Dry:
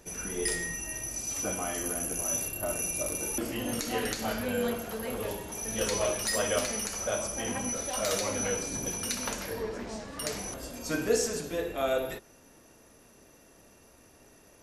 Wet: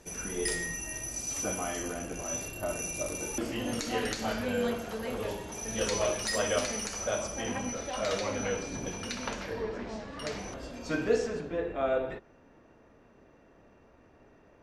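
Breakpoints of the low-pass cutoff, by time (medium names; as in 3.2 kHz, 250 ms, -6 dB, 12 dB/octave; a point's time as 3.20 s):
1.61 s 10 kHz
2.09 s 4.1 kHz
2.59 s 7.4 kHz
6.98 s 7.4 kHz
7.92 s 4.1 kHz
11.03 s 4.1 kHz
11.49 s 2 kHz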